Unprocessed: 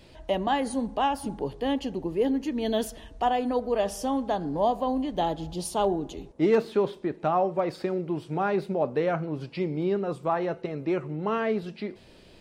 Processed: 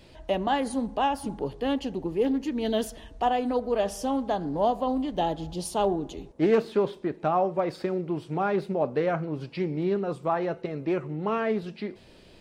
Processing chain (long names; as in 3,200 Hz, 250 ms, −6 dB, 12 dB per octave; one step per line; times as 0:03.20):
highs frequency-modulated by the lows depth 0.16 ms